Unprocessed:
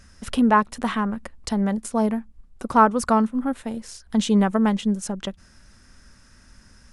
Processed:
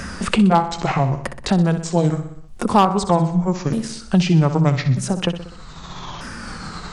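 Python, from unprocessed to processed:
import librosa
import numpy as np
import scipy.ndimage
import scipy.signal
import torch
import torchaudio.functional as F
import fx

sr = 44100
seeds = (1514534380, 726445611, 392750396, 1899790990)

y = fx.pitch_ramps(x, sr, semitones=-8.5, every_ms=1242)
y = fx.echo_feedback(y, sr, ms=62, feedback_pct=51, wet_db=-11.5)
y = np.clip(10.0 ** (8.0 / 20.0) * y, -1.0, 1.0) / 10.0 ** (8.0 / 20.0)
y = fx.dynamic_eq(y, sr, hz=3900.0, q=1.4, threshold_db=-47.0, ratio=4.0, max_db=5)
y = fx.band_squash(y, sr, depth_pct=70)
y = y * librosa.db_to_amplitude(5.0)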